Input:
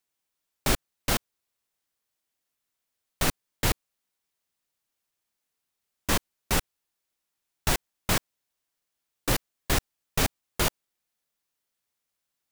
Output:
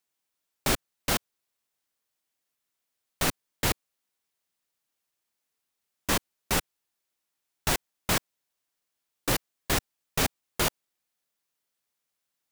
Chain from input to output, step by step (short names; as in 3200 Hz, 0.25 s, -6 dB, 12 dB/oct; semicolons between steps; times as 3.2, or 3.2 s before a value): low shelf 87 Hz -7 dB